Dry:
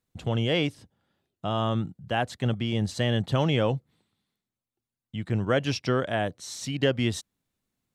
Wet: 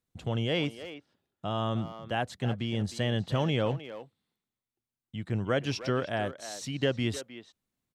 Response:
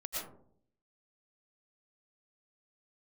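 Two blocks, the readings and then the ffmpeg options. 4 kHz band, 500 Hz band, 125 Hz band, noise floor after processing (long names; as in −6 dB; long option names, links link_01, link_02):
−4.0 dB, −3.5 dB, −4.0 dB, below −85 dBFS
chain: -filter_complex "[0:a]asplit=2[link_01][link_02];[link_02]adelay=310,highpass=300,lowpass=3400,asoftclip=type=hard:threshold=-20dB,volume=-11dB[link_03];[link_01][link_03]amix=inputs=2:normalize=0,volume=-4dB"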